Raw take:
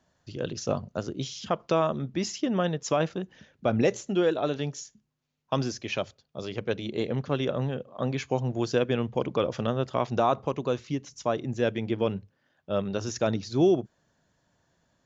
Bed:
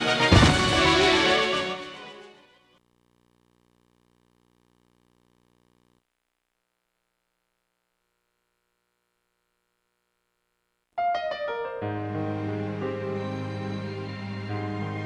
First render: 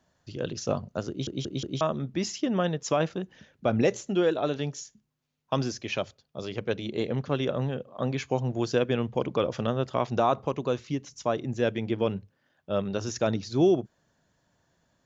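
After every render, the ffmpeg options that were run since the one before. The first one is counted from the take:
-filter_complex "[0:a]asplit=5[s0][s1][s2][s3][s4];[s0]atrim=end=1.272[s5];[s1]atrim=start=1.088:end=1.272[s6];[s2]atrim=start=1.088:end=1.272[s7];[s3]atrim=start=1.088:end=1.272[s8];[s4]atrim=start=1.808[s9];[s5][s6]acrossfade=d=0.004:c1=hsin:c2=hsin[s10];[s10][s7]acrossfade=d=0.004:c1=hsin:c2=hsin[s11];[s11][s8]acrossfade=d=0.004:c1=hsin:c2=hsin[s12];[s12][s9]acrossfade=d=0.004:c1=hsin:c2=hsin"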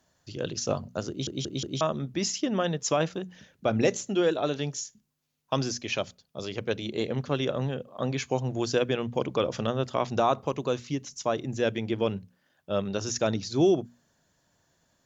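-af "aemphasis=mode=production:type=cd,bandreject=f=60:t=h:w=6,bandreject=f=120:t=h:w=6,bandreject=f=180:t=h:w=6,bandreject=f=240:t=h:w=6"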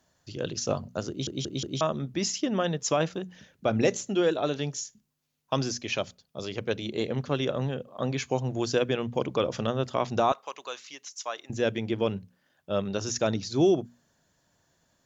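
-filter_complex "[0:a]asettb=1/sr,asplit=3[s0][s1][s2];[s0]atrim=end=10.324[s3];[s1]atrim=start=10.32:end=11.5,asetpts=PTS-STARTPTS,afade=t=in:d=0.004:c=qsin,afade=t=out:st=1.176:d=0.004:c=qsin,highpass=1000[s4];[s2]atrim=start=11.496[s5];[s3][s4]acrossfade=d=0.004:c1=hsin:c2=qsin[s6];[s6][s5]acrossfade=d=0.004:c1=qsin:c2=hsin"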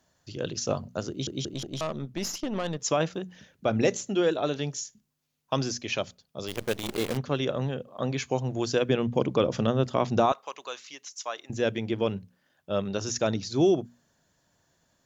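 -filter_complex "[0:a]asettb=1/sr,asplit=3[s0][s1][s2];[s0]atrim=end=1.534[s3];[s1]atrim=start=1.53:end=2.8,asetpts=PTS-STARTPTS,afade=t=in:d=0.004:c=qsin,afade=t=out:st=1.266:d=0.004:c=qsin,aeval=exprs='(tanh(17.8*val(0)+0.6)-tanh(0.6))/17.8':c=same[s4];[s2]atrim=start=2.796[s5];[s3][s4]acrossfade=d=0.004:c1=hsin:c2=qsin[s6];[s6][s5]acrossfade=d=0.004:c1=qsin:c2=hsin,asplit=3[s7][s8][s9];[s7]afade=t=out:st=6.47:d=0.02[s10];[s8]acrusher=bits=6:dc=4:mix=0:aa=0.000001,afade=t=in:st=6.47:d=0.02,afade=t=out:st=7.16:d=0.02[s11];[s9]afade=t=in:st=7.16:d=0.02[s12];[s10][s11][s12]amix=inputs=3:normalize=0,asettb=1/sr,asplit=3[s13][s14][s15];[s13]atrim=end=8.894[s16];[s14]atrim=start=8.89:end=10.26,asetpts=PTS-STARTPTS,afade=t=in:d=0.004:c=qsin,afade=t=out:st=1.366:d=0.004:c=qsin,equalizer=f=190:w=0.49:g=5.5[s17];[s15]atrim=start=10.256[s18];[s16][s17]acrossfade=d=0.004:c1=hsin:c2=qsin[s19];[s19][s18]acrossfade=d=0.004:c1=qsin:c2=hsin"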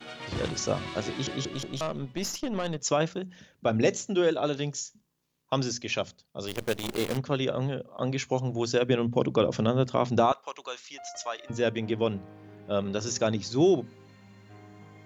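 -filter_complex "[1:a]volume=0.112[s0];[0:a][s0]amix=inputs=2:normalize=0"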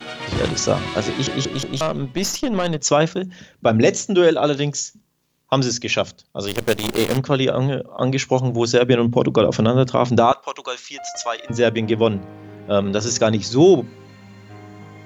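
-af "volume=3.16,alimiter=limit=0.708:level=0:latency=1"

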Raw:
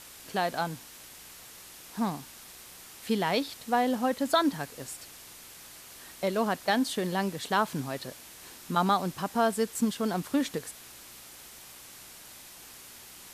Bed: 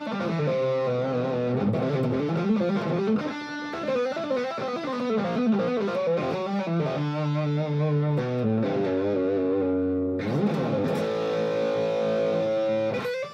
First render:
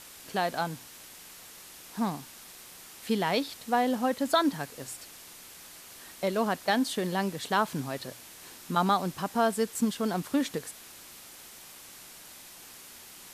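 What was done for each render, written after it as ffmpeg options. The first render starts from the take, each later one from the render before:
-af "bandreject=f=60:t=h:w=4,bandreject=f=120:t=h:w=4"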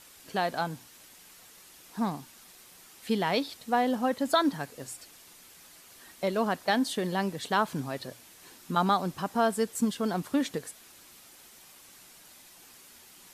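-af "afftdn=nr=6:nf=-49"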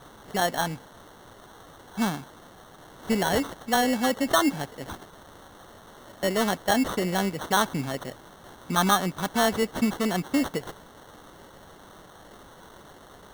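-filter_complex "[0:a]asplit=2[s0][s1];[s1]asoftclip=type=tanh:threshold=0.0531,volume=0.708[s2];[s0][s2]amix=inputs=2:normalize=0,acrusher=samples=18:mix=1:aa=0.000001"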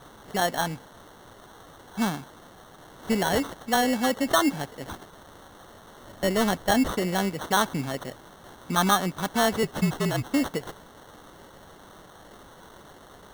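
-filter_complex "[0:a]asettb=1/sr,asplit=3[s0][s1][s2];[s0]atrim=end=6.034[s3];[s1]atrim=start=6.03:end=6.91,asetpts=PTS-STARTPTS,afade=t=in:d=0.004:c=qsin,afade=t=out:st=0.876:d=0.004:c=qsin,lowshelf=f=130:g=9[s4];[s2]atrim=start=6.906[s5];[s3][s4]acrossfade=d=0.004:c1=hsin:c2=qsin[s6];[s6][s5]acrossfade=d=0.004:c1=qsin:c2=hsin,asettb=1/sr,asplit=3[s7][s8][s9];[s7]atrim=end=9.634[s10];[s8]atrim=start=9.63:end=10.33,asetpts=PTS-STARTPTS,afade=t=in:d=0.004:c=qsin,afade=t=out:st=0.696:d=0.004:c=qsin,afreqshift=-46[s11];[s9]atrim=start=10.326[s12];[s10][s11]acrossfade=d=0.004:c1=hsin:c2=qsin[s13];[s13][s12]acrossfade=d=0.004:c1=qsin:c2=hsin"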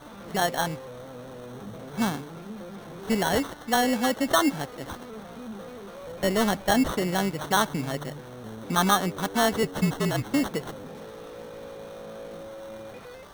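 -filter_complex "[1:a]volume=0.158[s0];[0:a][s0]amix=inputs=2:normalize=0"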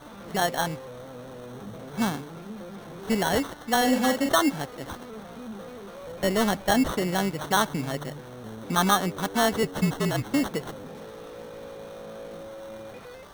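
-filter_complex "[0:a]asettb=1/sr,asplit=3[s0][s1][s2];[s0]atrim=end=3.774[s3];[s1]atrim=start=3.77:end=4.29,asetpts=PTS-STARTPTS,afade=t=in:d=0.004:c=qsin,afade=t=out:st=0.516:d=0.004:c=qsin,asplit=2[s4][s5];[s5]adelay=43,volume=0.562[s6];[s4][s6]amix=inputs=2:normalize=0,atrim=end_sample=22932[s7];[s2]atrim=start=4.286[s8];[s3][s7]acrossfade=d=0.004:c1=hsin:c2=qsin[s9];[s9][s8]acrossfade=d=0.004:c1=qsin:c2=hsin"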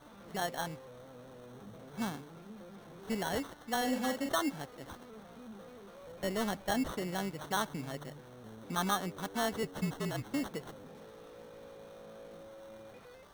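-af "volume=0.299"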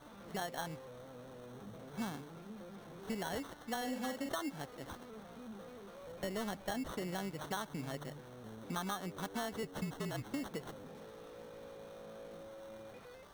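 -af "acompressor=threshold=0.0158:ratio=6"

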